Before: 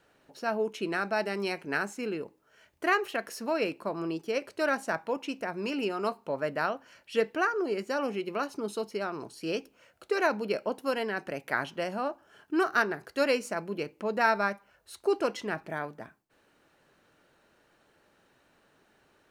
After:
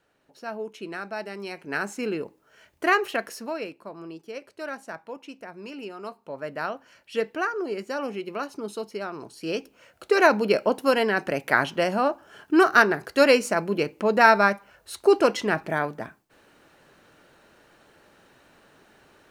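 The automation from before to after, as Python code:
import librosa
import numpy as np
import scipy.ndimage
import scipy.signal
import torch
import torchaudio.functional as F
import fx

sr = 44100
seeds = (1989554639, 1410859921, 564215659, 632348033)

y = fx.gain(x, sr, db=fx.line((1.48, -4.0), (1.94, 5.0), (3.19, 5.0), (3.74, -6.5), (6.08, -6.5), (6.74, 0.5), (9.21, 0.5), (10.24, 9.0)))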